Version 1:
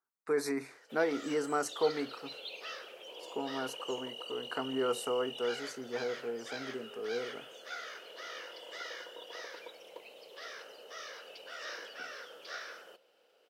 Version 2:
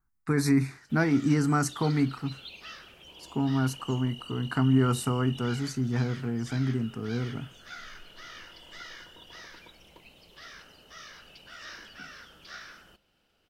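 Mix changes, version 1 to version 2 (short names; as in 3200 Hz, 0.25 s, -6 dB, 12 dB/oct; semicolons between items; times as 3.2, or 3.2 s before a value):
speech +7.0 dB; master: remove resonant high-pass 490 Hz, resonance Q 4.3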